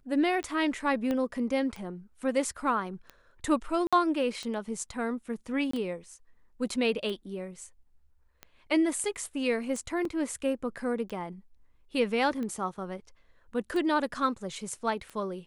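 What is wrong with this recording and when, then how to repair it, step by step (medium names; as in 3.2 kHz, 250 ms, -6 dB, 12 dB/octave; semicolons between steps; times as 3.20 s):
tick 45 rpm -25 dBFS
1.11 s: pop -19 dBFS
3.87–3.93 s: dropout 56 ms
5.71–5.73 s: dropout 24 ms
10.05 s: dropout 3.4 ms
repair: de-click; interpolate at 3.87 s, 56 ms; interpolate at 5.71 s, 24 ms; interpolate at 10.05 s, 3.4 ms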